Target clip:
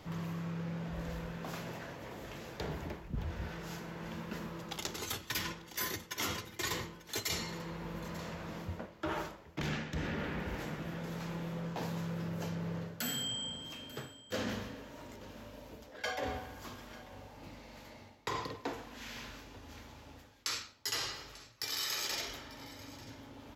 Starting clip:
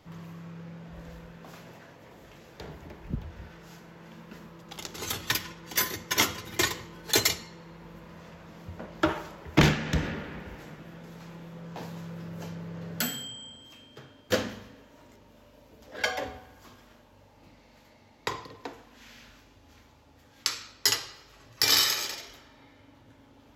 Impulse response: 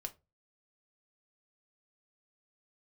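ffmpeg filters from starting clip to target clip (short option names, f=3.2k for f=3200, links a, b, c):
-af "areverse,acompressor=threshold=-39dB:ratio=16,areverse,aecho=1:1:892:0.119,volume=5dB"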